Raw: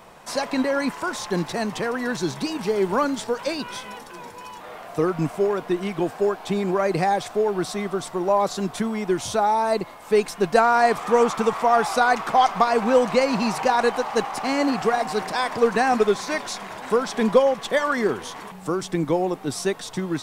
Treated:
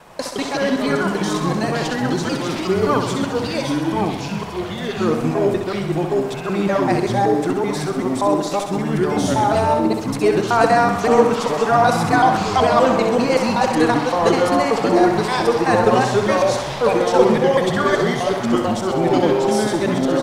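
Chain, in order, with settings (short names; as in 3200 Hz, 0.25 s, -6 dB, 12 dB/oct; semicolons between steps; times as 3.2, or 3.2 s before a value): local time reversal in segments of 0.191 s; echoes that change speed 0.101 s, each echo -5 st, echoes 2; feedback echo 65 ms, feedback 60%, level -7 dB; gain +1.5 dB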